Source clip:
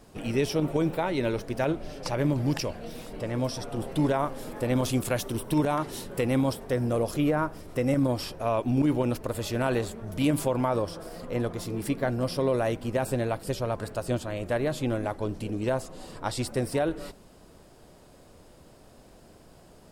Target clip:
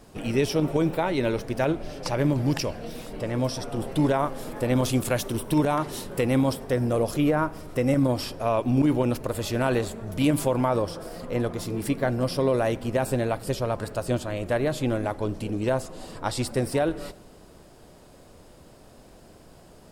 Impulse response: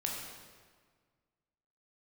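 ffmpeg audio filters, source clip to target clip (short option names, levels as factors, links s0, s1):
-filter_complex "[0:a]asplit=2[s0][s1];[1:a]atrim=start_sample=2205,asetrate=38808,aresample=44100[s2];[s1][s2]afir=irnorm=-1:irlink=0,volume=0.0708[s3];[s0][s3]amix=inputs=2:normalize=0,volume=1.26"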